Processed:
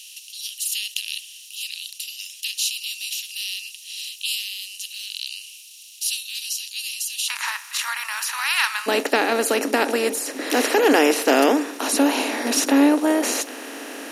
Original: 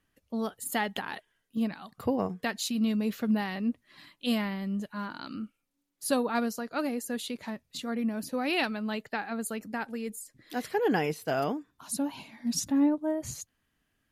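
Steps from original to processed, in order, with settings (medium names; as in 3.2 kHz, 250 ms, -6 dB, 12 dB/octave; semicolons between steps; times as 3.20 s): spectral levelling over time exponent 0.4; Chebyshev high-pass 2.8 kHz, order 5, from 7.28 s 960 Hz, from 8.86 s 260 Hz; trim +7 dB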